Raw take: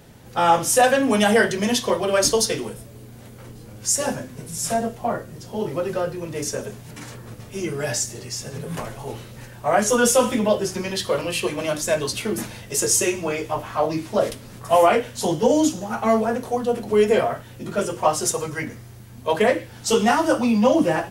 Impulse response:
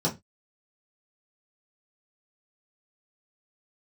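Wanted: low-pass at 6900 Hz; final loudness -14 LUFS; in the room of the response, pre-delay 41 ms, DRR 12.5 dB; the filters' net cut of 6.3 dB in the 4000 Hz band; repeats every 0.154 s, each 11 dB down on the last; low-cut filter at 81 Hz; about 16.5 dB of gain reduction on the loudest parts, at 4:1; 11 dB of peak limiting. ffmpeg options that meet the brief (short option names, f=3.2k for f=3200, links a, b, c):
-filter_complex "[0:a]highpass=81,lowpass=6.9k,equalizer=f=4k:t=o:g=-8.5,acompressor=threshold=-33dB:ratio=4,alimiter=level_in=6.5dB:limit=-24dB:level=0:latency=1,volume=-6.5dB,aecho=1:1:154|308|462:0.282|0.0789|0.0221,asplit=2[a][b];[1:a]atrim=start_sample=2205,adelay=41[c];[b][c]afir=irnorm=-1:irlink=0,volume=-22dB[d];[a][d]amix=inputs=2:normalize=0,volume=24dB"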